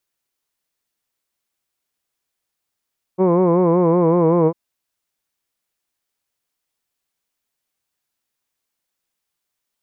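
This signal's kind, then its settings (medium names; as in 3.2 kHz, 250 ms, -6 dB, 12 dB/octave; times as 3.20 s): formant-synthesis vowel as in hood, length 1.35 s, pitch 180 Hz, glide -1.5 st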